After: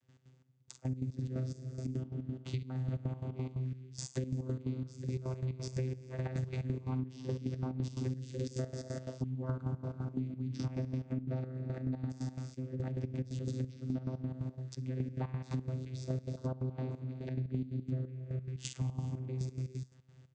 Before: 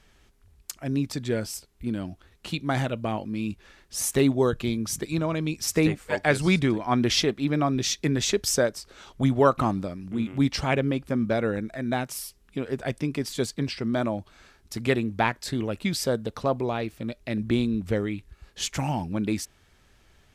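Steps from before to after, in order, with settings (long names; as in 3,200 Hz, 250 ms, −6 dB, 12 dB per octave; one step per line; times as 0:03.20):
bass and treble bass +7 dB, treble +10 dB
ambience of single reflections 46 ms −11.5 dB, 66 ms −12 dB
brickwall limiter −10.5 dBFS, peak gain reduction 5.5 dB
reverb whose tail is shaped and stops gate 450 ms flat, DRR 6 dB
channel vocoder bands 16, saw 129 Hz
gate pattern ".x.xx...x.x.x" 177 BPM −12 dB
downward compressor 6 to 1, threshold −34 dBFS, peak gain reduction 19 dB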